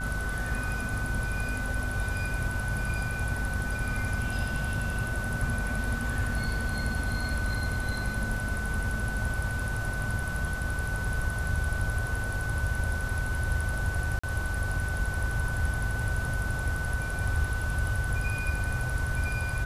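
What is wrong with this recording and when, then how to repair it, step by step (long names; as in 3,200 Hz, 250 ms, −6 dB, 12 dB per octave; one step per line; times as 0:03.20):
mains buzz 50 Hz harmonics 32 −35 dBFS
whistle 1,500 Hz −34 dBFS
0:14.19–0:14.23: drop-out 45 ms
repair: hum removal 50 Hz, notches 32
notch filter 1,500 Hz, Q 30
repair the gap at 0:14.19, 45 ms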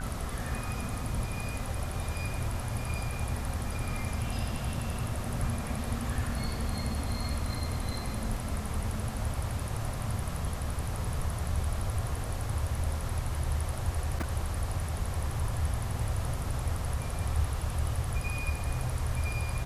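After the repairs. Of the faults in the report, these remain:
none of them is left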